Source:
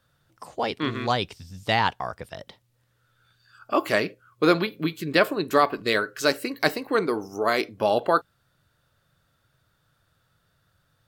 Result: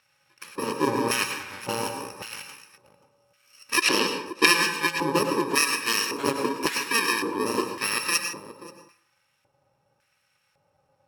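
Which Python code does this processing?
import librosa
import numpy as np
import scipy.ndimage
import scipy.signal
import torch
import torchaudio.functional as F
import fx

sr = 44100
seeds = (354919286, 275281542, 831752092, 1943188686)

p1 = fx.bit_reversed(x, sr, seeds[0], block=64)
p2 = fx.low_shelf(p1, sr, hz=270.0, db=-7.5, at=(1.69, 2.29))
p3 = fx.rev_plate(p2, sr, seeds[1], rt60_s=0.65, hf_ratio=0.65, predelay_ms=85, drr_db=5.0)
p4 = fx.rider(p3, sr, range_db=5, speed_s=0.5)
p5 = p3 + F.gain(torch.from_numpy(p4), 0.0).numpy()
p6 = fx.weighting(p5, sr, curve='D', at=(3.82, 4.46))
p7 = p6 + fx.echo_single(p6, sr, ms=531, db=-16.0, dry=0)
p8 = fx.filter_lfo_bandpass(p7, sr, shape='square', hz=0.9, low_hz=690.0, high_hz=1900.0, q=1.3)
y = F.gain(torch.from_numpy(p8), 6.5).numpy()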